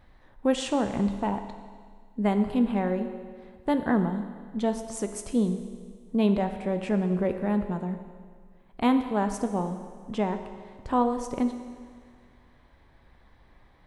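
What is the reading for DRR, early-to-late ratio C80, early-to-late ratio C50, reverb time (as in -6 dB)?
7.0 dB, 10.0 dB, 9.0 dB, 1.8 s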